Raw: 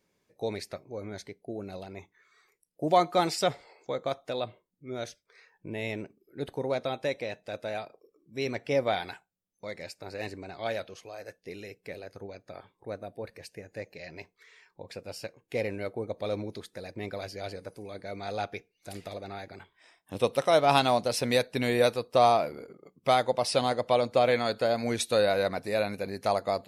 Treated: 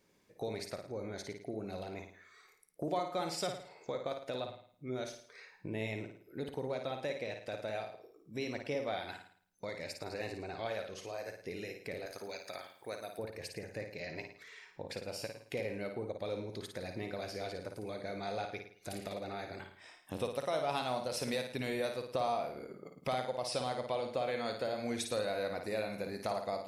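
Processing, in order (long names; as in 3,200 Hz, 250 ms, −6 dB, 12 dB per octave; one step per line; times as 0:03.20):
0:12.06–0:13.19: spectral tilt +4 dB per octave
downward compressor 2.5 to 1, threshold −43 dBFS, peak gain reduction 17 dB
on a send: flutter between parallel walls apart 9.4 metres, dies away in 0.52 s
on the sum: level +2.5 dB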